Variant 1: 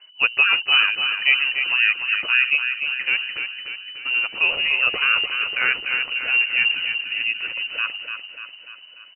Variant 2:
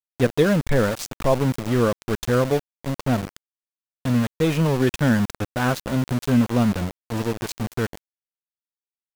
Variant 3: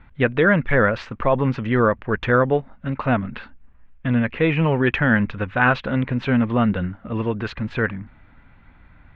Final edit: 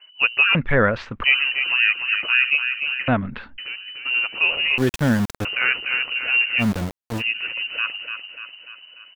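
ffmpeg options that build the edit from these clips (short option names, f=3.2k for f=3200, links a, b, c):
-filter_complex "[2:a]asplit=2[a][b];[1:a]asplit=2[c][d];[0:a]asplit=5[e][f][g][h][i];[e]atrim=end=0.552[j];[a]atrim=start=0.548:end=1.242[k];[f]atrim=start=1.238:end=3.082[l];[b]atrim=start=3.078:end=3.582[m];[g]atrim=start=3.578:end=4.782[n];[c]atrim=start=4.778:end=5.452[o];[h]atrim=start=5.448:end=6.64[p];[d]atrim=start=6.58:end=7.23[q];[i]atrim=start=7.17[r];[j][k]acrossfade=d=0.004:c1=hsin:c2=hsin[s];[s][l]acrossfade=d=0.004:c1=hsin:c2=hsin[t];[t][m]acrossfade=d=0.004:c1=hsin:c2=hsin[u];[u][n]acrossfade=d=0.004:c1=hsin:c2=hsin[v];[v][o]acrossfade=d=0.004:c1=hsin:c2=hsin[w];[w][p]acrossfade=d=0.004:c1=hsin:c2=hsin[x];[x][q]acrossfade=d=0.06:c1=tri:c2=tri[y];[y][r]acrossfade=d=0.06:c1=tri:c2=tri"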